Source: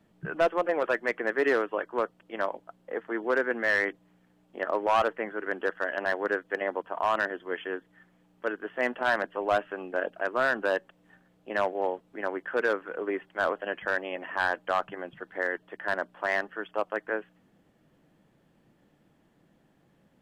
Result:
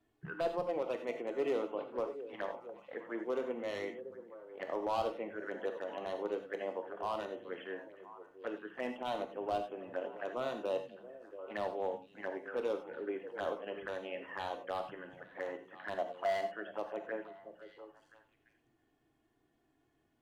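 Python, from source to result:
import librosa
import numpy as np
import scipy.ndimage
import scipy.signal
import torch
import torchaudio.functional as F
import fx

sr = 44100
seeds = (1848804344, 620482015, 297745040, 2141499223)

y = fx.env_flanger(x, sr, rest_ms=2.9, full_db=-27.0)
y = fx.small_body(y, sr, hz=(680.0, 2900.0), ring_ms=35, db=fx.line((15.97, 14.0), (16.62, 16.0)), at=(15.97, 16.62), fade=0.02)
y = np.clip(y, -10.0 ** (-20.0 / 20.0), 10.0 ** (-20.0 / 20.0))
y = fx.echo_stepped(y, sr, ms=342, hz=160.0, octaves=1.4, feedback_pct=70, wet_db=-7.5)
y = fx.rev_gated(y, sr, seeds[0], gate_ms=120, shape='flat', drr_db=5.5)
y = y * 10.0 ** (-7.5 / 20.0)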